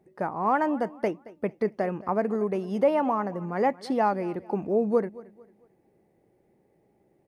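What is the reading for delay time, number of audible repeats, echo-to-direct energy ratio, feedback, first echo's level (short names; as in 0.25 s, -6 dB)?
0.224 s, 2, -19.5 dB, 34%, -20.0 dB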